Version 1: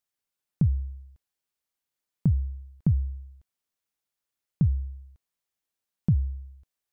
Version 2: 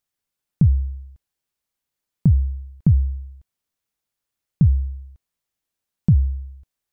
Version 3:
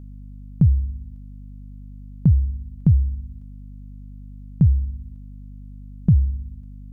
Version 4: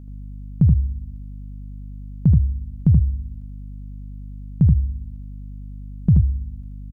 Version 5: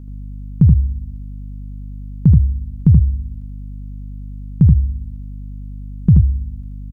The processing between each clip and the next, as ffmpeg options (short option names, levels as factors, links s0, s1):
-af "lowshelf=f=210:g=6,volume=1.41"
-af "aeval=exprs='val(0)+0.0141*(sin(2*PI*50*n/s)+sin(2*PI*2*50*n/s)/2+sin(2*PI*3*50*n/s)/3+sin(2*PI*4*50*n/s)/4+sin(2*PI*5*50*n/s)/5)':c=same"
-af "aecho=1:1:79:0.668"
-af "asuperstop=centerf=640:order=4:qfactor=2.9,volume=1.68"